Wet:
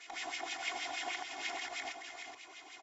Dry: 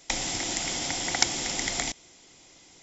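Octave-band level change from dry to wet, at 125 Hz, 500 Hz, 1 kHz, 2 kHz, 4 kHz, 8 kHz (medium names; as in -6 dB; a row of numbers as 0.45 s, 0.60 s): under -30 dB, -8.5 dB, -5.5 dB, -6.0 dB, -12.5 dB, no reading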